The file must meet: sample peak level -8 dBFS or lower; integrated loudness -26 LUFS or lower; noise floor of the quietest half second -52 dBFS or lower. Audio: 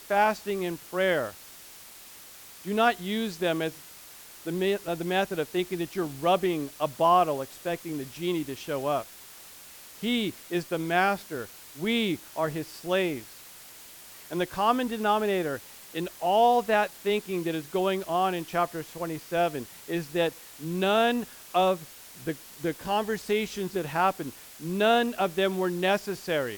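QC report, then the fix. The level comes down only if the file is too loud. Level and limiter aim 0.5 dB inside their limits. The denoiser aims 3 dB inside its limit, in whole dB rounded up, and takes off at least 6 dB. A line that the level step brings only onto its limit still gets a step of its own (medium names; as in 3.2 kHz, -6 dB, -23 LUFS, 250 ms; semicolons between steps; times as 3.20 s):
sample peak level -10.0 dBFS: pass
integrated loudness -28.0 LUFS: pass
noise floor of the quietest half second -48 dBFS: fail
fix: noise reduction 7 dB, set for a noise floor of -48 dBFS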